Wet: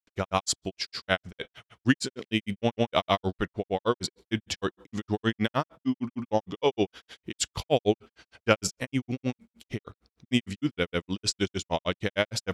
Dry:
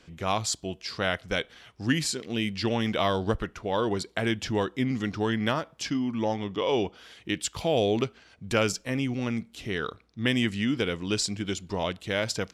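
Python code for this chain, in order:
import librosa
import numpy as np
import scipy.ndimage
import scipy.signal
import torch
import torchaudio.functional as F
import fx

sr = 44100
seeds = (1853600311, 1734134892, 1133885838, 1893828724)

y = fx.granulator(x, sr, seeds[0], grain_ms=100.0, per_s=6.5, spray_ms=100.0, spread_st=0)
y = F.gain(torch.from_numpy(y), 5.0).numpy()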